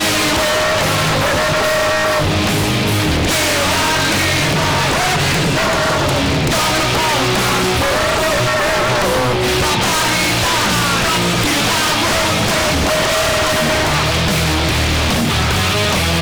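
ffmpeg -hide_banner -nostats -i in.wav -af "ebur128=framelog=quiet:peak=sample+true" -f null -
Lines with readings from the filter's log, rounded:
Integrated loudness:
  I:         -14.1 LUFS
  Threshold: -24.1 LUFS
Loudness range:
  LRA:         0.5 LU
  Threshold: -34.1 LUFS
  LRA low:   -14.3 LUFS
  LRA high:  -13.7 LUFS
Sample peak:
  Peak:      -10.1 dBFS
True peak:
  Peak:       -8.1 dBFS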